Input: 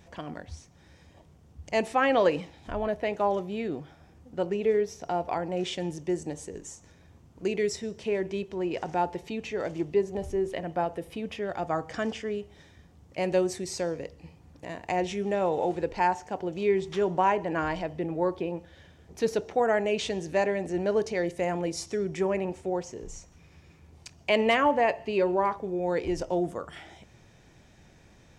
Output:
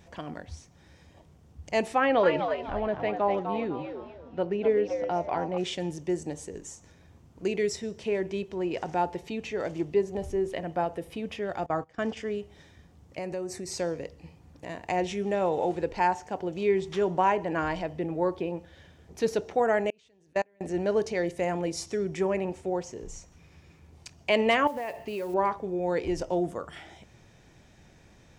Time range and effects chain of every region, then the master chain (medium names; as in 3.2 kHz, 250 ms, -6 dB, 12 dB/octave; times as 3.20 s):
1.98–5.58 s: Gaussian low-pass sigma 1.7 samples + frequency-shifting echo 250 ms, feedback 32%, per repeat +91 Hz, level -7 dB
11.66–12.17 s: gate -38 dBFS, range -19 dB + treble shelf 5.5 kHz -8 dB
13.18–13.71 s: peaking EQ 3.3 kHz -15 dB 0.29 oct + compression 3:1, threshold -33 dBFS
19.90–20.61 s: peaking EQ 1.4 kHz +2.5 dB 0.81 oct + level held to a coarse grid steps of 23 dB + upward expansion 2.5:1, over -34 dBFS
24.67–25.34 s: compression, threshold -30 dBFS + modulation noise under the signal 24 dB
whole clip: none